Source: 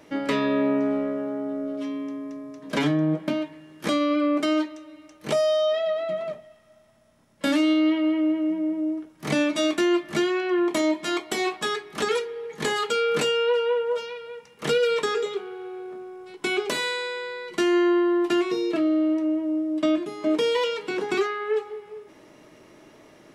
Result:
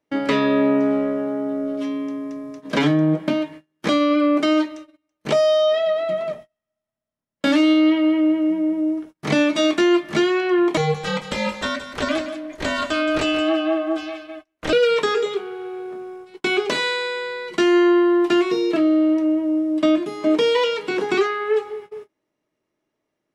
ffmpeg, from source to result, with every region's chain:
ffmpeg -i in.wav -filter_complex "[0:a]asettb=1/sr,asplit=3[link_01][link_02][link_03];[link_01]atrim=end=10.774[link_04];[link_02]atrim=start=10.77:end=14.73,asetpts=PTS-STARTPTS,afade=type=in:duration=0.004:curve=qsin,afade=type=out:start_time=3.956:duration=0.004:curve=qsin,aeval=exprs='val(0)*sin(2*PI*160*n/s)':channel_layout=same,aecho=1:1:173:0.266,atrim=end_sample=174636[link_05];[link_03]atrim=start=14.726[link_06];[link_04][link_05]acrossfade=duration=0.004:curve1=hsin:curve2=qsin[link_07];[link_07][link_06]acrossfade=duration=0.004:curve1=qsin:curve2=hsin,agate=range=-32dB:threshold=-41dB:ratio=16:detection=peak,acrossover=split=6800[link_08][link_09];[link_09]acompressor=threshold=-57dB:ratio=4:attack=1:release=60[link_10];[link_08][link_10]amix=inputs=2:normalize=0,volume=5dB" out.wav

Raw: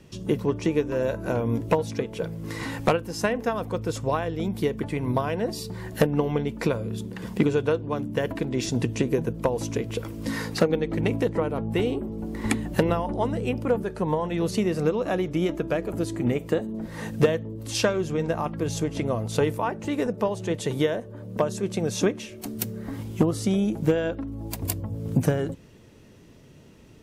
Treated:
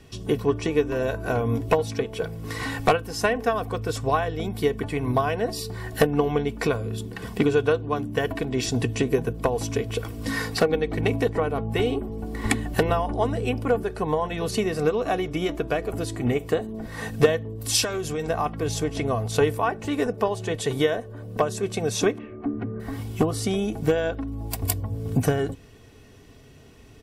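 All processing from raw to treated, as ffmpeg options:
ffmpeg -i in.wav -filter_complex "[0:a]asettb=1/sr,asplit=3[link_01][link_02][link_03];[link_01]atrim=end=17.614[link_04];[link_02]atrim=start=17.61:end=18.29,asetpts=PTS-STARTPTS,afade=type=in:duration=0.004:curve=qsin,afade=type=out:start_time=0.676:duration=0.004:curve=qsin,acompressor=threshold=-24dB:ratio=10:attack=3.2:release=140:knee=1:detection=peak,highshelf=frequency=5700:gain=12[link_05];[link_03]atrim=start=18.286[link_06];[link_04][link_05]acrossfade=duration=0.004:curve1=hsin:curve2=qsin[link_07];[link_07][link_06]acrossfade=duration=0.004:curve1=qsin:curve2=hsin,asettb=1/sr,asplit=3[link_08][link_09][link_10];[link_08]atrim=end=22.184[link_11];[link_09]atrim=start=22.18:end=22.8,asetpts=PTS-STARTPTS,afade=type=in:duration=0.004:curve=qsin,afade=type=out:start_time=0.616:duration=0.004:curve=qsin,lowpass=frequency=1700:width=0.5412,lowpass=frequency=1700:width=1.3066,equalizer=frequency=280:width=3.1:gain=11.5,aeval=exprs='val(0)+0.00126*sin(2*PI*1200*n/s)':channel_layout=same[link_12];[link_10]atrim=start=22.796[link_13];[link_11][link_12]acrossfade=duration=0.004:curve1=hsin:curve2=qsin[link_14];[link_14][link_13]acrossfade=duration=0.004:curve1=qsin:curve2=hsin,equalizer=frequency=340:width_type=o:width=0.22:gain=-14,bandreject=frequency=6500:width=15,aecho=1:1:2.7:0.56,volume=2.5dB" out.wav

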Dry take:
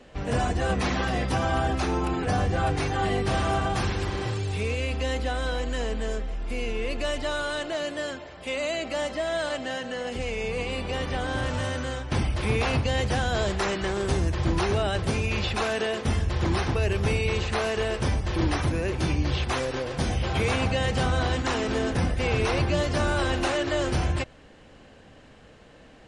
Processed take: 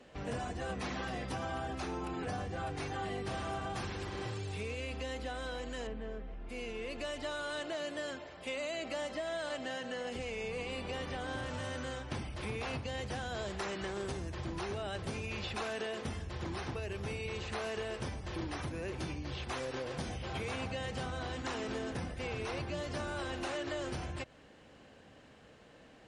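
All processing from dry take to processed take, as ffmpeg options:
ffmpeg -i in.wav -filter_complex "[0:a]asettb=1/sr,asplit=3[link_01][link_02][link_03];[link_01]atrim=end=5.874[link_04];[link_02]atrim=start=5.87:end=6.49,asetpts=PTS-STARTPTS,afade=type=in:duration=0.004:curve=qsin,afade=type=out:start_time=0.616:duration=0.004:curve=qsin,lowpass=2700,lowshelf=frequency=340:gain=6.5[link_05];[link_03]atrim=start=6.486[link_06];[link_04][link_05]acrossfade=duration=0.004:curve1=hsin:curve2=qsin[link_07];[link_07][link_06]acrossfade=duration=0.004:curve1=qsin:curve2=hsin,acompressor=threshold=-28dB:ratio=6,highpass=frequency=96:poles=1,volume=-6dB" out.wav

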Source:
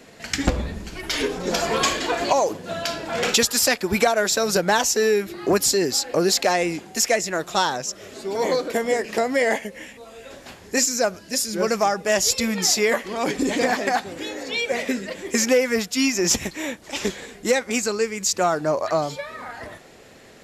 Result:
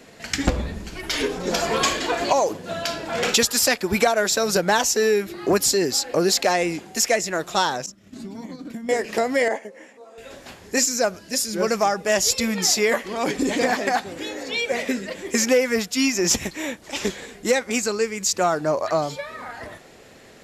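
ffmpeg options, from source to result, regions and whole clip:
ffmpeg -i in.wav -filter_complex "[0:a]asettb=1/sr,asplit=3[link_01][link_02][link_03];[link_01]atrim=end=7.864[link_04];[link_02]atrim=start=7.86:end=8.89,asetpts=PTS-STARTPTS,afade=type=in:duration=0.004:curve=qsin,afade=type=out:start_time=1.026:duration=0.004:curve=qsin,lowshelf=frequency=330:width_type=q:width=3:gain=10,acompressor=threshold=-26dB:ratio=20:attack=3.2:release=140:knee=1:detection=peak,agate=range=-33dB:threshold=-26dB:ratio=3:release=100:detection=peak[link_05];[link_03]atrim=start=8.886[link_06];[link_04][link_05]acrossfade=duration=0.004:curve1=hsin:curve2=qsin[link_07];[link_07][link_06]acrossfade=duration=0.004:curve1=qsin:curve2=hsin,asettb=1/sr,asplit=3[link_08][link_09][link_10];[link_08]atrim=end=9.484[link_11];[link_09]atrim=start=9.48:end=10.18,asetpts=PTS-STARTPTS,afade=type=in:duration=0.004:curve=qsin,afade=type=out:start_time=0.696:duration=0.004:curve=qsin,highpass=350,lowpass=6100,equalizer=frequency=3200:width_type=o:width=1.7:gain=-14[link_12];[link_10]atrim=start=10.176[link_13];[link_11][link_12]acrossfade=duration=0.004:curve1=hsin:curve2=qsin[link_14];[link_14][link_13]acrossfade=duration=0.004:curve1=qsin:curve2=hsin" out.wav

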